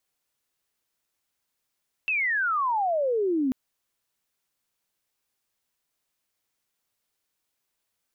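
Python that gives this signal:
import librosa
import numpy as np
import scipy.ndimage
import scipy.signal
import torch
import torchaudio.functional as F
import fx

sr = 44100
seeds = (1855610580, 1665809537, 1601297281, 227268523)

y = fx.chirp(sr, length_s=1.44, from_hz=2700.0, to_hz=250.0, law='logarithmic', from_db=-22.5, to_db=-21.5)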